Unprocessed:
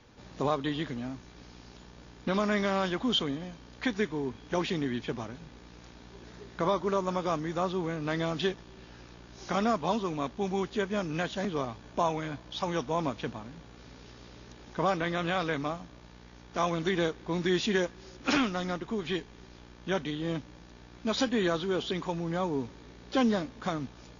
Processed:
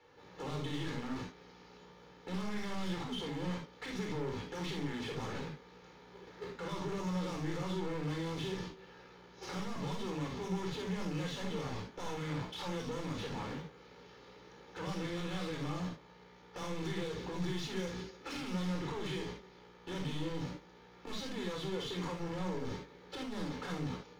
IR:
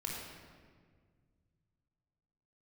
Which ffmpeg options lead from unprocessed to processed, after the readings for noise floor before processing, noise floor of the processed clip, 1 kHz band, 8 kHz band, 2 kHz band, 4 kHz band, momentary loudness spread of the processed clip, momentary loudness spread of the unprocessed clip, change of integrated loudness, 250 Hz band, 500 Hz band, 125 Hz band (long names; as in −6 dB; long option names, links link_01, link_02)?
−52 dBFS, −58 dBFS, −11.0 dB, can't be measured, −9.5 dB, −7.5 dB, 17 LU, 22 LU, −8.5 dB, −7.5 dB, −10.0 dB, −3.0 dB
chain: -filter_complex "[0:a]agate=range=-22dB:threshold=-44dB:ratio=16:detection=peak,equalizer=frequency=500:width=5.3:gain=6,acrossover=split=250|3400[link_01][link_02][link_03];[link_02]acompressor=threshold=-42dB:ratio=6[link_04];[link_01][link_04][link_03]amix=inputs=3:normalize=0,alimiter=level_in=7dB:limit=-24dB:level=0:latency=1,volume=-7dB,asplit=2[link_05][link_06];[link_06]highpass=frequency=720:poles=1,volume=27dB,asoftclip=type=tanh:threshold=-31dB[link_07];[link_05][link_07]amix=inputs=2:normalize=0,lowpass=frequency=1800:poles=1,volume=-6dB,acrusher=bits=8:mode=log:mix=0:aa=0.000001,asoftclip=type=tanh:threshold=-38.5dB[link_08];[1:a]atrim=start_sample=2205,atrim=end_sample=3528,asetrate=41454,aresample=44100[link_09];[link_08][link_09]afir=irnorm=-1:irlink=0,volume=2.5dB"